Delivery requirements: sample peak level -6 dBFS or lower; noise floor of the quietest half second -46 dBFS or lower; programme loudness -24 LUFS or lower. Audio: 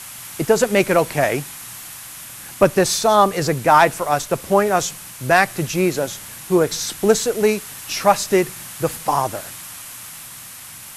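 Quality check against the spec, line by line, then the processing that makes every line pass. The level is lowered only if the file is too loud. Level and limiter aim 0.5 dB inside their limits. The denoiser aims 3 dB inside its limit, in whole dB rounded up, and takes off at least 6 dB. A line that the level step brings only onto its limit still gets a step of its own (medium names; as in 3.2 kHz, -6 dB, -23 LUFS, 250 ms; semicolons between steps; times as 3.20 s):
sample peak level -2.0 dBFS: fail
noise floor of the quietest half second -38 dBFS: fail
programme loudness -18.5 LUFS: fail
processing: noise reduction 6 dB, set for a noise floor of -38 dBFS; trim -6 dB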